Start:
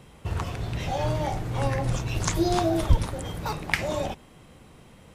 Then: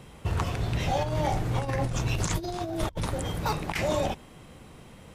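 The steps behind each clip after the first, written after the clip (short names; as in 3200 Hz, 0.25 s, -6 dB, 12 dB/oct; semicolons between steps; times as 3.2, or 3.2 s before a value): negative-ratio compressor -27 dBFS, ratio -0.5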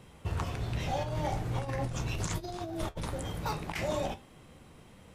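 flange 0.4 Hz, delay 9.9 ms, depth 9.1 ms, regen -63%; gain -1.5 dB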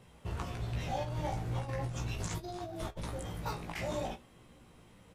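doubler 17 ms -4 dB; gain -5.5 dB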